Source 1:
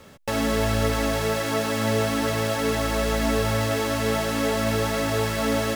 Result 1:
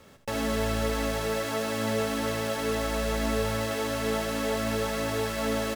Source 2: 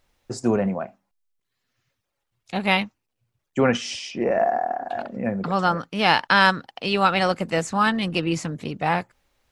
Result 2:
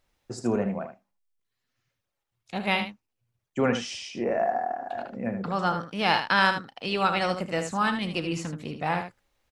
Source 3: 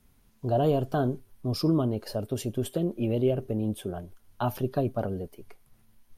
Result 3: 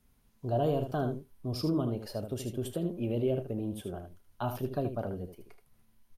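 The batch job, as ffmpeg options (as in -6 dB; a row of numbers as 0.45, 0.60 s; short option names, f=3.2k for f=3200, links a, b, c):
-af "aecho=1:1:34|77:0.158|0.376,volume=-5.5dB"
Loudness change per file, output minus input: -5.0, -5.0, -5.0 LU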